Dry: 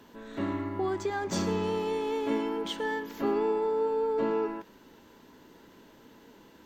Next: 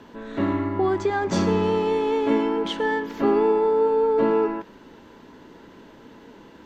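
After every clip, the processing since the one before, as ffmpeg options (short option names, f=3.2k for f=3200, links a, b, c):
-af "aemphasis=mode=reproduction:type=50fm,volume=8dB"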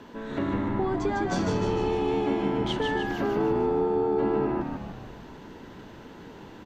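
-filter_complex "[0:a]acompressor=threshold=-28dB:ratio=2.5,asplit=2[a][b];[b]asplit=8[c][d][e][f][g][h][i][j];[c]adelay=152,afreqshift=-78,volume=-3.5dB[k];[d]adelay=304,afreqshift=-156,volume=-8.7dB[l];[e]adelay=456,afreqshift=-234,volume=-13.9dB[m];[f]adelay=608,afreqshift=-312,volume=-19.1dB[n];[g]adelay=760,afreqshift=-390,volume=-24.3dB[o];[h]adelay=912,afreqshift=-468,volume=-29.5dB[p];[i]adelay=1064,afreqshift=-546,volume=-34.7dB[q];[j]adelay=1216,afreqshift=-624,volume=-39.8dB[r];[k][l][m][n][o][p][q][r]amix=inputs=8:normalize=0[s];[a][s]amix=inputs=2:normalize=0"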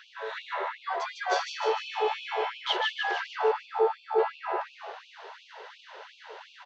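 -af "lowpass=f=5.4k:w=0.5412,lowpass=f=5.4k:w=1.3066,afftfilt=real='re*gte(b*sr/1024,380*pow(2400/380,0.5+0.5*sin(2*PI*2.8*pts/sr)))':imag='im*gte(b*sr/1024,380*pow(2400/380,0.5+0.5*sin(2*PI*2.8*pts/sr)))':win_size=1024:overlap=0.75,volume=5.5dB"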